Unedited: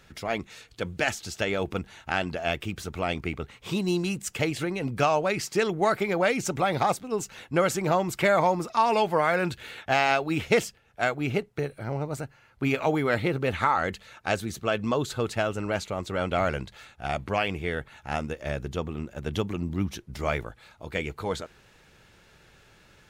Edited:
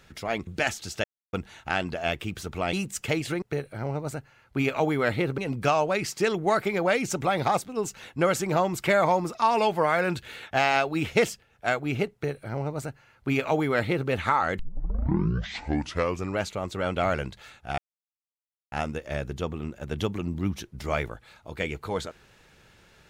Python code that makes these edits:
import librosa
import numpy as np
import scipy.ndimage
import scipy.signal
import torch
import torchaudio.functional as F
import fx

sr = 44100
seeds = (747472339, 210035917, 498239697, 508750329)

y = fx.edit(x, sr, fx.cut(start_s=0.47, length_s=0.41),
    fx.silence(start_s=1.45, length_s=0.29),
    fx.cut(start_s=3.14, length_s=0.9),
    fx.duplicate(start_s=11.48, length_s=1.96, to_s=4.73),
    fx.tape_start(start_s=13.94, length_s=1.82),
    fx.silence(start_s=17.13, length_s=0.94), tone=tone)